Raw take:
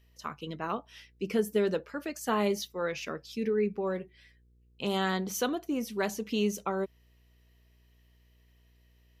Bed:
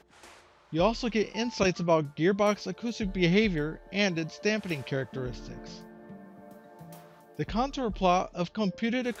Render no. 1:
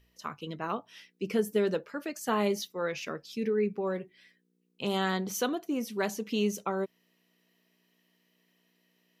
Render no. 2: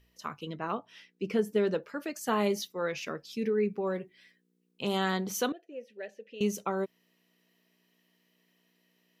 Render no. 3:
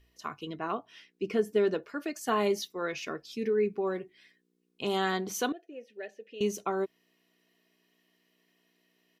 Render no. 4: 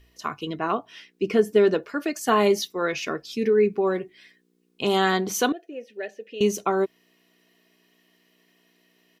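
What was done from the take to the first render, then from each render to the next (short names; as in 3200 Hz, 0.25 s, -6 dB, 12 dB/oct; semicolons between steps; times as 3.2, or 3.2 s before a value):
de-hum 60 Hz, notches 2
0.49–1.83 high shelf 7100 Hz -11.5 dB; 5.52–6.41 vowel filter e
high shelf 11000 Hz -5.5 dB; comb 2.8 ms, depth 38%
gain +8 dB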